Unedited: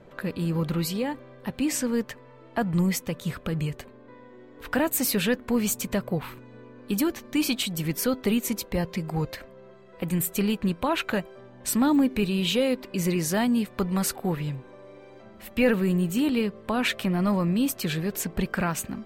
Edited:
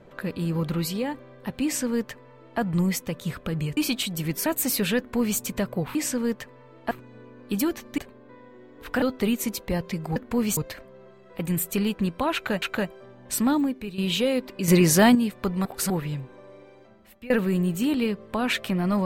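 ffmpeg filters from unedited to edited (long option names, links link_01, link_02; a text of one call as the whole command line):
ffmpeg -i in.wav -filter_complex "[0:a]asplit=16[link_01][link_02][link_03][link_04][link_05][link_06][link_07][link_08][link_09][link_10][link_11][link_12][link_13][link_14][link_15][link_16];[link_01]atrim=end=3.772[link_17];[link_02]atrim=start=7.368:end=8.062[link_18];[link_03]atrim=start=4.808:end=6.302[link_19];[link_04]atrim=start=1.638:end=2.602[link_20];[link_05]atrim=start=6.298:end=7.372[link_21];[link_06]atrim=start=3.768:end=4.812[link_22];[link_07]atrim=start=8.058:end=9.202[link_23];[link_08]atrim=start=5.328:end=5.742[link_24];[link_09]atrim=start=9.198:end=11.252[link_25];[link_10]atrim=start=10.968:end=12.33,asetpts=PTS-STARTPTS,afade=type=out:start_time=0.892:duration=0.47:curve=qua:silence=0.281838[link_26];[link_11]atrim=start=12.33:end=13.032,asetpts=PTS-STARTPTS,afade=type=in:duration=0.004:curve=hsin:silence=0.281838[link_27];[link_12]atrim=start=13.028:end=13.502,asetpts=PTS-STARTPTS,volume=8dB[link_28];[link_13]atrim=start=13.498:end=14.002[link_29];[link_14]atrim=start=13.998:end=14.252,asetpts=PTS-STARTPTS,areverse[link_30];[link_15]atrim=start=14.248:end=15.65,asetpts=PTS-STARTPTS,afade=type=out:start_time=0.612:duration=0.79:silence=0.0794328[link_31];[link_16]atrim=start=15.65,asetpts=PTS-STARTPTS,afade=type=in:duration=0.004:curve=hsin:silence=0.0794328[link_32];[link_17][link_18]acrossfade=duration=0.004:curve1=hsin:curve2=hsin[link_33];[link_33][link_19]acrossfade=duration=0.004:curve1=hsin:curve2=hsin[link_34];[link_34][link_20]acrossfade=duration=0.004:curve1=hsin:curve2=hsin[link_35];[link_35][link_21]acrossfade=duration=0.004:curve1=hsin:curve2=hsin[link_36];[link_36][link_22]acrossfade=duration=0.004:curve1=hsin:curve2=hsin[link_37];[link_37][link_23]acrossfade=duration=0.004:curve1=hsin:curve2=hsin[link_38];[link_38][link_24]acrossfade=duration=0.004:curve1=hsin:curve2=hsin[link_39];[link_39][link_25]acrossfade=duration=0.004:curve1=hsin:curve2=hsin[link_40];[link_26][link_27]concat=n=2:v=0:a=1[link_41];[link_40][link_41]acrossfade=duration=0.004:curve1=hsin:curve2=hsin[link_42];[link_42][link_28]acrossfade=duration=0.004:curve1=hsin:curve2=hsin[link_43];[link_43][link_29]acrossfade=duration=0.004:curve1=hsin:curve2=hsin[link_44];[link_44][link_30]acrossfade=duration=0.004:curve1=hsin:curve2=hsin[link_45];[link_31][link_32]concat=n=2:v=0:a=1[link_46];[link_45][link_46]acrossfade=duration=0.004:curve1=hsin:curve2=hsin" out.wav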